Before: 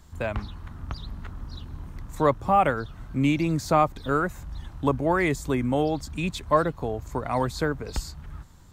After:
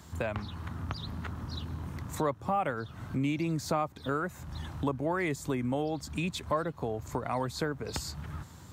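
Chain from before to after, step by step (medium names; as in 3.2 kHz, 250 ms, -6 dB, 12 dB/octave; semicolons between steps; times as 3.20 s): high-pass 78 Hz 24 dB/octave; compression 2.5:1, threshold -39 dBFS, peak gain reduction 16 dB; trim +5 dB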